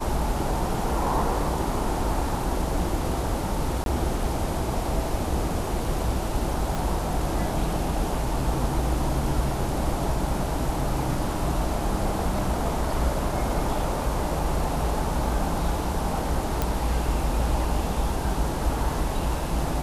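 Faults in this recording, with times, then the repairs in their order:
3.84–3.86 s: dropout 22 ms
6.75 s: pop
16.62 s: pop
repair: de-click; interpolate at 3.84 s, 22 ms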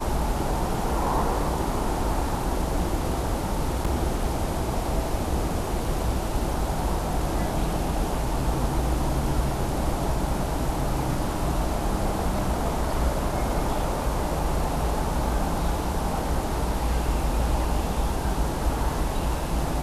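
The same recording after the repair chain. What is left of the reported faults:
6.75 s: pop

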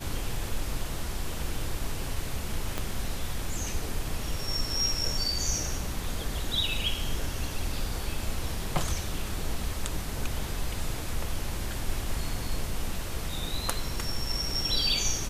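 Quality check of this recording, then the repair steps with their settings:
2.78 s: pop -15 dBFS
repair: de-click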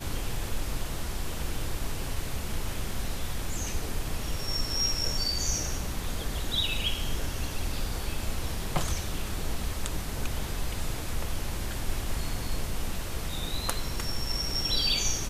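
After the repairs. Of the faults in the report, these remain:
2.78 s: pop

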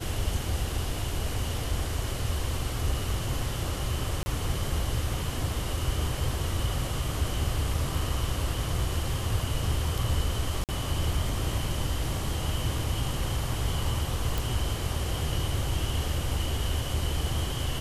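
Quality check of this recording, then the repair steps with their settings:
4.23–4.26 s: dropout 30 ms
10.64–10.69 s: dropout 48 ms
14.38 s: pop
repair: de-click; interpolate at 4.23 s, 30 ms; interpolate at 10.64 s, 48 ms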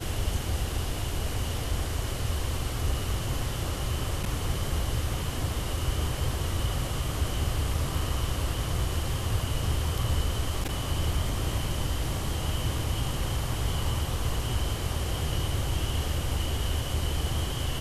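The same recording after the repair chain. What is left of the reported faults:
nothing left

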